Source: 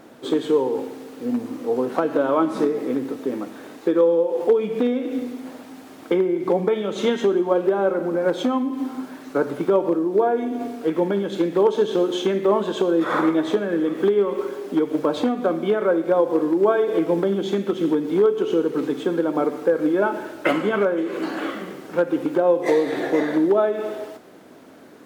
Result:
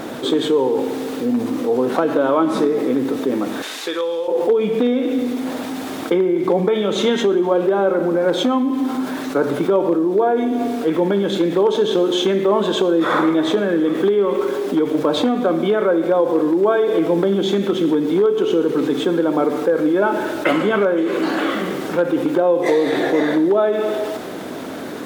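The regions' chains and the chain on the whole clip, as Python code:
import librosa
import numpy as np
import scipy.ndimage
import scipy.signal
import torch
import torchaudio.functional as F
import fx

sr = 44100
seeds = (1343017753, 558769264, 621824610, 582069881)

y = fx.chain(x, sr, fx.bandpass_q(hz=3400.0, q=0.72),
    fx.high_shelf(hz=4800.0, db=11.0), at=(3.62, 4.28))
y = fx.peak_eq(y, sr, hz=3600.0, db=4.5, octaves=0.21)
y = fx.env_flatten(y, sr, amount_pct=50)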